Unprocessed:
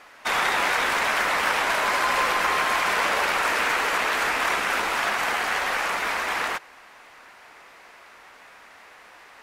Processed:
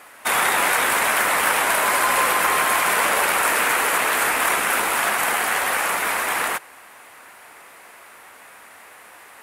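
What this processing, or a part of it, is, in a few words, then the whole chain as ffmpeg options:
budget condenser microphone: -af "highpass=68,highshelf=frequency=7400:width_type=q:width=1.5:gain=10.5,volume=3.5dB"

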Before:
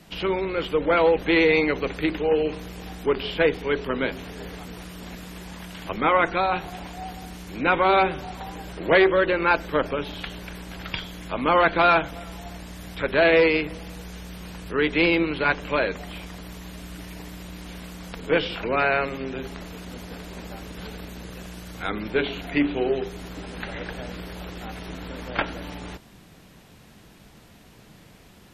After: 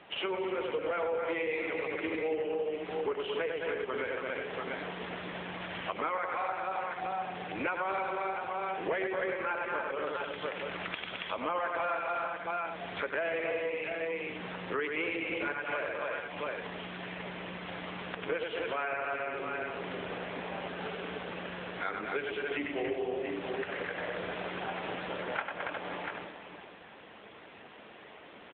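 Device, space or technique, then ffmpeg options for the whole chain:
voicemail: -af "highpass=420,lowpass=3300,aecho=1:1:95|215|278|356|688|761:0.596|0.398|0.562|0.335|0.251|0.1,acompressor=threshold=-35dB:ratio=6,volume=4dB" -ar 8000 -c:a libopencore_amrnb -b:a 7950

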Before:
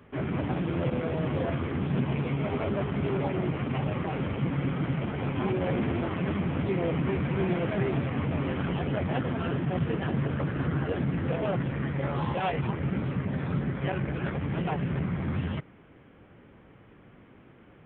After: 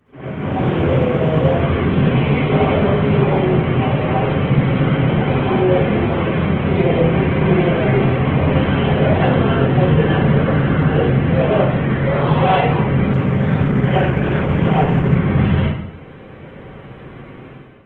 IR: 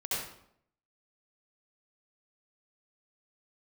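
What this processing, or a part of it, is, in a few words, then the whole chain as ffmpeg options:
speakerphone in a meeting room: -filter_complex "[0:a]asplit=3[link_01][link_02][link_03];[link_01]afade=type=out:start_time=1.62:duration=0.02[link_04];[link_02]highshelf=frequency=2300:gain=2.5,afade=type=in:start_time=1.62:duration=0.02,afade=type=out:start_time=2.72:duration=0.02[link_05];[link_03]afade=type=in:start_time=2.72:duration=0.02[link_06];[link_04][link_05][link_06]amix=inputs=3:normalize=0[link_07];[1:a]atrim=start_sample=2205[link_08];[link_07][link_08]afir=irnorm=-1:irlink=0,dynaudnorm=framelen=380:gausssize=3:maxgain=14dB,volume=-1dB" -ar 48000 -c:a libopus -b:a 16k

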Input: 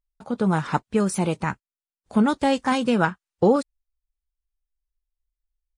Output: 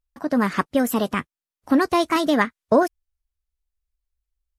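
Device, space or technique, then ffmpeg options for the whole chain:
nightcore: -af "asetrate=55566,aresample=44100,volume=1.5dB"

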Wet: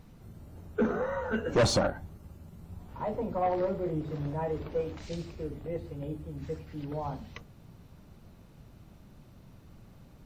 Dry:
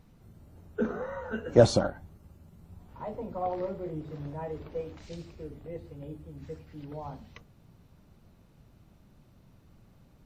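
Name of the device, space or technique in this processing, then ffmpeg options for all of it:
saturation between pre-emphasis and de-emphasis: -af "highshelf=frequency=8200:gain=9,asoftclip=type=tanh:threshold=-24.5dB,highshelf=frequency=8200:gain=-9,volume=5dB"

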